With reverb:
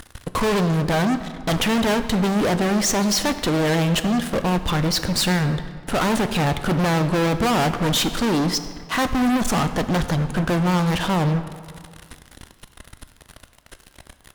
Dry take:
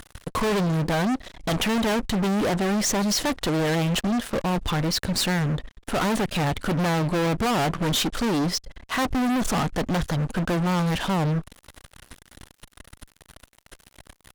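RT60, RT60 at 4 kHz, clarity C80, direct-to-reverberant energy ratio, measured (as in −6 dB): 2.0 s, 1.3 s, 12.5 dB, 9.5 dB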